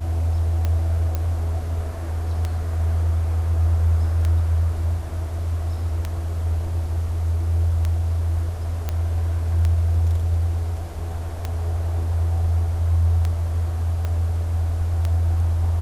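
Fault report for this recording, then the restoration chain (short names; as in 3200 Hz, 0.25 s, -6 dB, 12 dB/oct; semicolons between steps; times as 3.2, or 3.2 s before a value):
tick 33 1/3 rpm -12 dBFS
1.15 pop -12 dBFS
8.89 pop -12 dBFS
14.05 pop -15 dBFS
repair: de-click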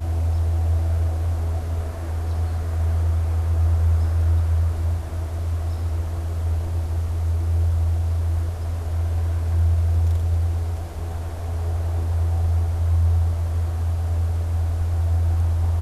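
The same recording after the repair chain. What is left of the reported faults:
8.89 pop
14.05 pop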